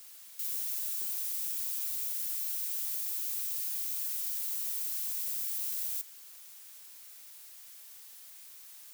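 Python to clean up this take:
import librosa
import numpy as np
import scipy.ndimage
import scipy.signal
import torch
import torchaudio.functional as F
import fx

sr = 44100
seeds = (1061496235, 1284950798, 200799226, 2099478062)

y = fx.fix_declip(x, sr, threshold_db=-24.0)
y = fx.noise_reduce(y, sr, print_start_s=6.78, print_end_s=7.28, reduce_db=30.0)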